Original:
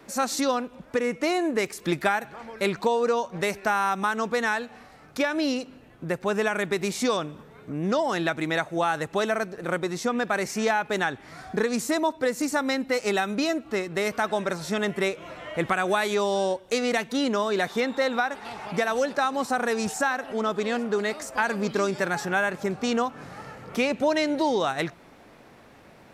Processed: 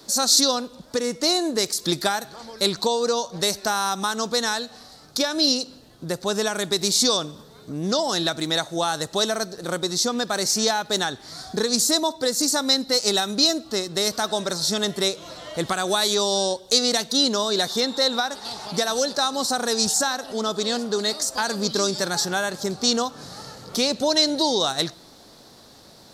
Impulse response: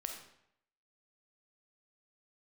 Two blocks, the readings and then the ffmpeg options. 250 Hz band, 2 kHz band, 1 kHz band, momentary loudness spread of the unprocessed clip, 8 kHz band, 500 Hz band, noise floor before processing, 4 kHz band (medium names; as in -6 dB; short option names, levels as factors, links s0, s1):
+1.0 dB, -3.0 dB, 0.0 dB, 7 LU, +13.5 dB, +0.5 dB, -52 dBFS, +14.0 dB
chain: -filter_complex "[0:a]highshelf=f=3200:t=q:w=3:g=10,asplit=2[s0][s1];[1:a]atrim=start_sample=2205[s2];[s1][s2]afir=irnorm=-1:irlink=0,volume=0.15[s3];[s0][s3]amix=inputs=2:normalize=0"